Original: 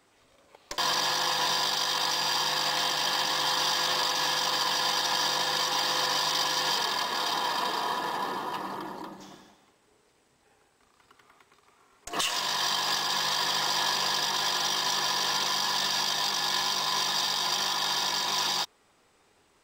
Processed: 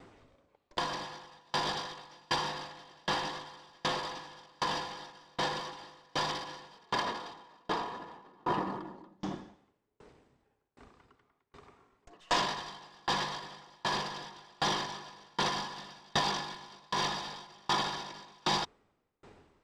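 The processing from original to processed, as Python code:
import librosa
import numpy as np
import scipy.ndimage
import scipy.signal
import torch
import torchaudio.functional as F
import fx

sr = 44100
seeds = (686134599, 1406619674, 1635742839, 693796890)

y = fx.low_shelf(x, sr, hz=410.0, db=9.0)
y = np.clip(y, -10.0 ** (-25.5 / 20.0), 10.0 ** (-25.5 / 20.0))
y = scipy.signal.sosfilt(scipy.signal.butter(2, 7500.0, 'lowpass', fs=sr, output='sos'), y)
y = fx.high_shelf(y, sr, hz=3400.0, db=-10.5)
y = fx.over_compress(y, sr, threshold_db=-34.0, ratio=-0.5)
y = fx.tremolo_decay(y, sr, direction='decaying', hz=1.3, depth_db=36)
y = y * 10.0 ** (7.5 / 20.0)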